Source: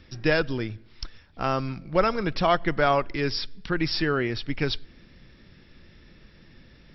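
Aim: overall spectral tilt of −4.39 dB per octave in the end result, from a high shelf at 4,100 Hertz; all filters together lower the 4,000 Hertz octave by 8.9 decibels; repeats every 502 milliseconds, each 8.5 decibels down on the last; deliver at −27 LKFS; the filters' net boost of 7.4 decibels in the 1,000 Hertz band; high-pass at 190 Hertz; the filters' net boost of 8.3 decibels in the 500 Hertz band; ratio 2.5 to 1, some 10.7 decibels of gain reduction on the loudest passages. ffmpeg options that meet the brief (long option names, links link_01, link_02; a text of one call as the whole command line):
ffmpeg -i in.wav -af "highpass=190,equalizer=frequency=500:width_type=o:gain=8,equalizer=frequency=1000:width_type=o:gain=8.5,equalizer=frequency=4000:width_type=o:gain=-8,highshelf=frequency=4100:gain=-6.5,acompressor=threshold=-25dB:ratio=2.5,aecho=1:1:502|1004|1506|2008:0.376|0.143|0.0543|0.0206,volume=1.5dB" out.wav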